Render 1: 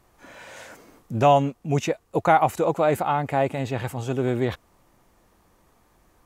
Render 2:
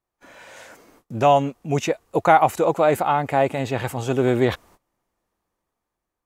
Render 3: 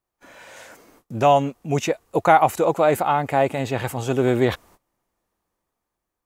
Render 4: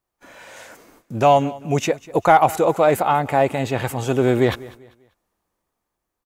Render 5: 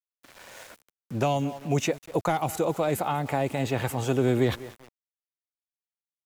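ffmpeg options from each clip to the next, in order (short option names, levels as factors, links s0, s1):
-af "agate=range=0.0794:threshold=0.00224:ratio=16:detection=peak,bass=f=250:g=-4,treble=f=4000:g=0,dynaudnorm=f=380:g=7:m=3.76,volume=0.891"
-af "highshelf=f=9300:g=4"
-filter_complex "[0:a]asplit=2[s0][s1];[s1]asoftclip=type=hard:threshold=0.316,volume=0.398[s2];[s0][s2]amix=inputs=2:normalize=0,aecho=1:1:196|392|588:0.1|0.033|0.0109,volume=0.891"
-filter_complex "[0:a]aresample=32000,aresample=44100,aeval=exprs='val(0)*gte(abs(val(0)),0.01)':c=same,acrossover=split=310|3000[s0][s1][s2];[s1]acompressor=threshold=0.0794:ratio=6[s3];[s0][s3][s2]amix=inputs=3:normalize=0,volume=0.668"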